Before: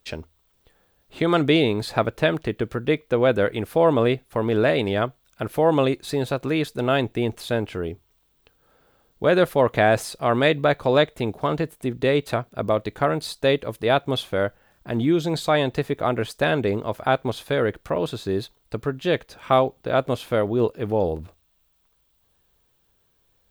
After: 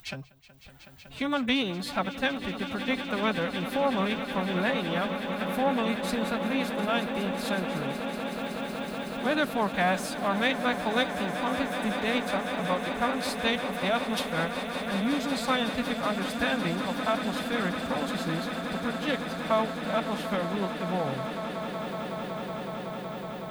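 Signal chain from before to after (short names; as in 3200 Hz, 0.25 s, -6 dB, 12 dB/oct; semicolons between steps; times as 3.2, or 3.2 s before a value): in parallel at +1.5 dB: compressor 6:1, threshold -31 dBFS, peak gain reduction 17.5 dB; on the sum: formant-preserving pitch shift +9 st; upward compressor, threshold -37 dBFS; bell 400 Hz -10 dB 0.83 oct; on a send: swelling echo 0.186 s, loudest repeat 8, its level -13.5 dB; on the sum: gain -7 dB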